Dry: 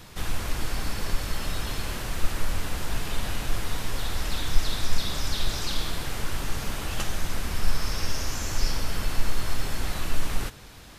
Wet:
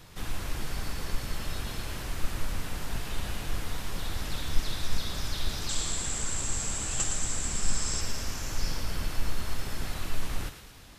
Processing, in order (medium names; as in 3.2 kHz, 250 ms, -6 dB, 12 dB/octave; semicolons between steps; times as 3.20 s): octave divider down 1 oct, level -1 dB; 5.69–8.01 s: resonant low-pass 7.6 kHz, resonance Q 16; thinning echo 112 ms, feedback 60%, high-pass 1 kHz, level -8 dB; trim -5.5 dB